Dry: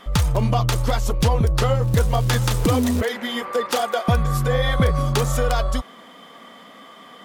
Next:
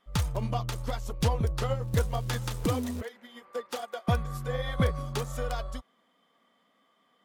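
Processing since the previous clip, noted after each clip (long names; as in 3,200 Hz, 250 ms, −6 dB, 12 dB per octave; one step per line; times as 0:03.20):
expander for the loud parts 2.5 to 1, over −27 dBFS
level −6 dB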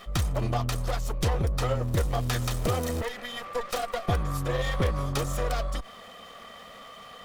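lower of the sound and its delayed copy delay 1.6 ms
envelope flattener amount 50%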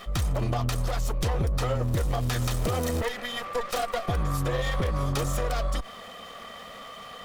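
brickwall limiter −22 dBFS, peak gain reduction 8 dB
level +3.5 dB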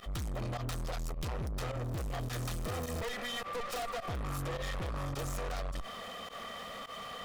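fake sidechain pumping 105 BPM, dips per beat 1, −22 dB, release 71 ms
soft clipping −34.5 dBFS, distortion −6 dB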